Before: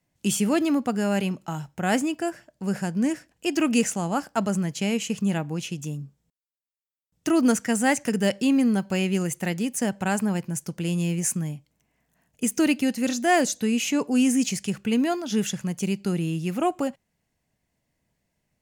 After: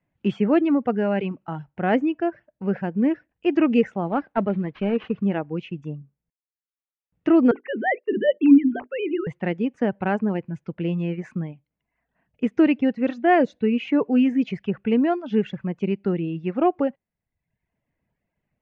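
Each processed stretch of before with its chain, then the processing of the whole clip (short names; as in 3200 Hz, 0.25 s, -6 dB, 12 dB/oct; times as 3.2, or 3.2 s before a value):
4.06–5.25 CVSD 32 kbps + high shelf 4900 Hz -6.5 dB
7.51–9.27 sine-wave speech + notches 50/100/150/200/250/300/350/400/450/500 Hz + gate -39 dBFS, range -16 dB
whole clip: reverb removal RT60 0.81 s; LPF 2600 Hz 24 dB/oct; dynamic EQ 420 Hz, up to +7 dB, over -38 dBFS, Q 1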